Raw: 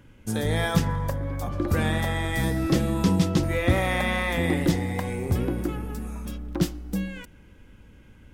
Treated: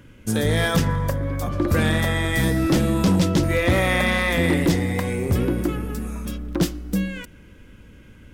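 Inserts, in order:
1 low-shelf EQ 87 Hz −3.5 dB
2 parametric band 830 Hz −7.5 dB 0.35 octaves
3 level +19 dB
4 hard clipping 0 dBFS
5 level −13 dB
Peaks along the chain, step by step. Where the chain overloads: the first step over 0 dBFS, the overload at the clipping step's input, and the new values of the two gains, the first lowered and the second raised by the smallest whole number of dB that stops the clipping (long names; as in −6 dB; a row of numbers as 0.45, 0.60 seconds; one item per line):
−9.5, −9.5, +9.5, 0.0, −13.0 dBFS
step 3, 9.5 dB
step 3 +9 dB, step 5 −3 dB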